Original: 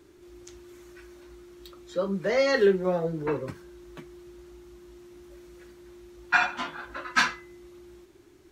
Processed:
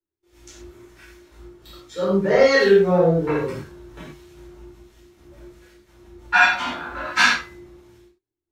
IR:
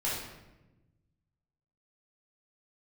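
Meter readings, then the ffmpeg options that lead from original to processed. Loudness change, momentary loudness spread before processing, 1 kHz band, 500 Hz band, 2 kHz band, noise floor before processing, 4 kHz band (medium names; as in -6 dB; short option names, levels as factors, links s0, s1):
+8.0 dB, 14 LU, +7.5 dB, +8.0 dB, +8.5 dB, -55 dBFS, +8.5 dB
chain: -filter_complex "[0:a]agate=range=0.00708:threshold=0.00398:ratio=16:detection=peak[s0];[1:a]atrim=start_sample=2205,atrim=end_sample=6174[s1];[s0][s1]afir=irnorm=-1:irlink=0,acrossover=split=1600[s2][s3];[s2]aeval=exprs='val(0)*(1-0.5/2+0.5/2*cos(2*PI*1.3*n/s))':c=same[s4];[s3]aeval=exprs='val(0)*(1-0.5/2-0.5/2*cos(2*PI*1.3*n/s))':c=same[s5];[s4][s5]amix=inputs=2:normalize=0,volume=1.58"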